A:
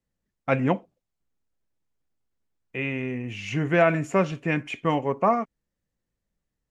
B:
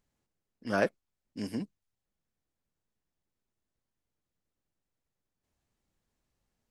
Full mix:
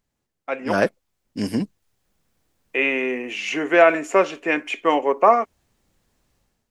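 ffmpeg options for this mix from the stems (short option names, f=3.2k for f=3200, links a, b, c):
-filter_complex "[0:a]highpass=f=320:w=0.5412,highpass=f=320:w=1.3066,volume=-4dB[a];[1:a]volume=3dB[b];[a][b]amix=inputs=2:normalize=0,dynaudnorm=f=530:g=3:m=14.5dB"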